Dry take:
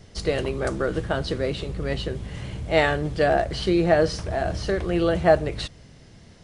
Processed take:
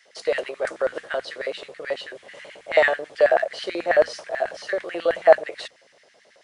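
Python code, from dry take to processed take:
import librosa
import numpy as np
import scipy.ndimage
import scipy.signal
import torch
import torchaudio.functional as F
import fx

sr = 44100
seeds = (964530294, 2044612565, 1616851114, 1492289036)

y = fx.filter_lfo_highpass(x, sr, shape='square', hz=9.2, low_hz=560.0, high_hz=1800.0, q=3.5)
y = fx.hum_notches(y, sr, base_hz=60, count=4)
y = y * 10.0 ** (-4.0 / 20.0)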